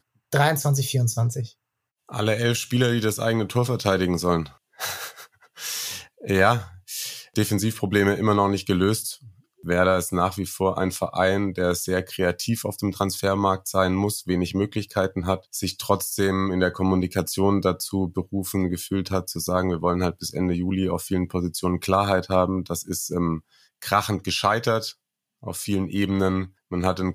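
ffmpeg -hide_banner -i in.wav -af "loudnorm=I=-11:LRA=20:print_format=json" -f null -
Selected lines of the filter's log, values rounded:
"input_i" : "-24.0",
"input_tp" : "-4.0",
"input_lra" : "2.3",
"input_thresh" : "-34.3",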